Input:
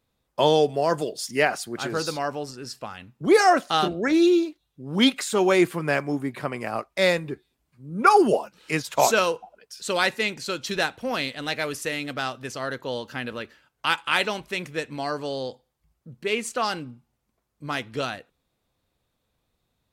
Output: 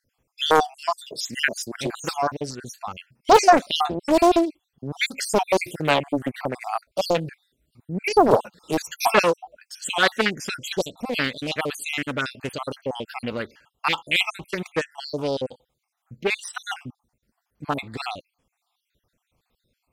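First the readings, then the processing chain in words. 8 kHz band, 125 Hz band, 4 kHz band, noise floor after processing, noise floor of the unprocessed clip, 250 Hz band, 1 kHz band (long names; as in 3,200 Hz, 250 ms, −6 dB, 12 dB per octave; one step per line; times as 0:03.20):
+0.5 dB, 0.0 dB, +1.0 dB, −80 dBFS, −77 dBFS, −1.5 dB, +2.0 dB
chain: time-frequency cells dropped at random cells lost 59%
highs frequency-modulated by the lows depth 0.84 ms
level +5.5 dB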